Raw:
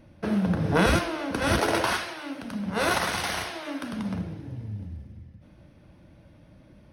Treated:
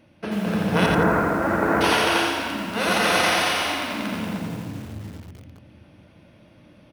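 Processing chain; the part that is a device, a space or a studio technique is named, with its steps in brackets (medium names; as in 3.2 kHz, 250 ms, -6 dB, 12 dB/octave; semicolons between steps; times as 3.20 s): stadium PA (high-pass 180 Hz 6 dB/octave; peaking EQ 2.8 kHz +6 dB 0.64 oct; loudspeakers at several distances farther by 80 m -1 dB, 96 m -8 dB; reverberation RT60 2.0 s, pre-delay 117 ms, DRR 4.5 dB); 0.86–1.81 s: steep low-pass 1.8 kHz 36 dB/octave; bit-crushed delay 86 ms, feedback 35%, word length 7-bit, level -3 dB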